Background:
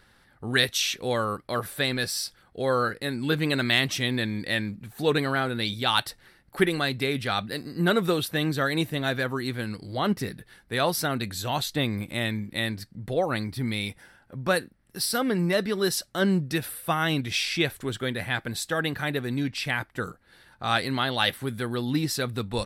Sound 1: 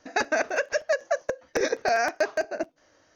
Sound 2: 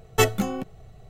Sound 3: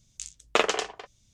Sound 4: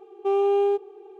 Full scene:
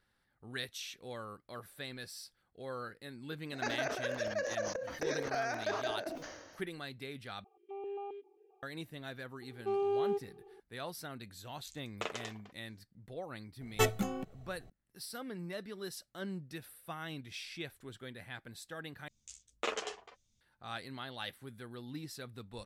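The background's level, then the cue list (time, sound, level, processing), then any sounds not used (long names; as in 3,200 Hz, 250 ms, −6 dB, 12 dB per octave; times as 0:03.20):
background −18 dB
0:03.46: mix in 1 −12.5 dB + level that may fall only so fast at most 45 dB per second
0:07.44: overwrite with 4 −7 dB + formant filter that steps through the vowels 7.5 Hz
0:09.41: mix in 4 −11 dB
0:11.46: mix in 3 −16.5 dB
0:13.61: mix in 2 −9 dB
0:19.08: overwrite with 3 −9.5 dB + string-ensemble chorus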